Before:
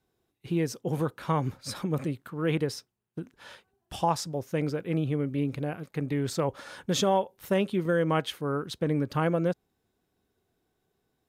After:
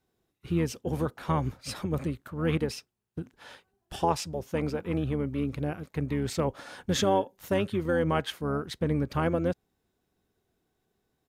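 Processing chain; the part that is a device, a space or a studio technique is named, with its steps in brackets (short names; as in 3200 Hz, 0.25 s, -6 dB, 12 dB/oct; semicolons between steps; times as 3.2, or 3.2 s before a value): octave pedal (harmoniser -12 st -8 dB); 4.45–5.26 bell 890 Hz +5.5 dB 0.61 oct; gain -1 dB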